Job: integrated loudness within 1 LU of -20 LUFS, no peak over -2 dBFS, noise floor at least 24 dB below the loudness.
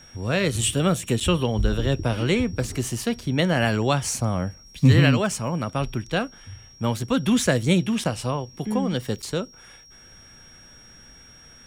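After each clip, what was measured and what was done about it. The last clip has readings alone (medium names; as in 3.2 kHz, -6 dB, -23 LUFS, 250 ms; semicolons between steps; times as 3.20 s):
dropouts 3; longest dropout 6.6 ms; steady tone 5.6 kHz; tone level -48 dBFS; loudness -23.5 LUFS; peak level -4.0 dBFS; loudness target -20.0 LUFS
-> interpolate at 1.20/8.04/9.22 s, 6.6 ms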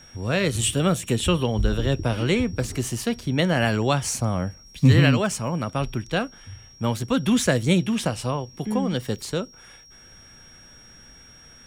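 dropouts 0; steady tone 5.6 kHz; tone level -48 dBFS
-> band-stop 5.6 kHz, Q 30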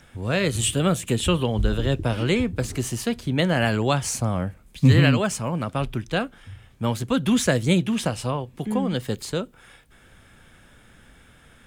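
steady tone not found; loudness -23.5 LUFS; peak level -4.5 dBFS; loudness target -20.0 LUFS
-> trim +3.5 dB; peak limiter -2 dBFS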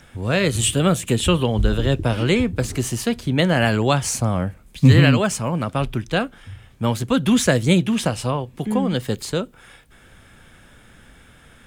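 loudness -20.0 LUFS; peak level -2.0 dBFS; noise floor -50 dBFS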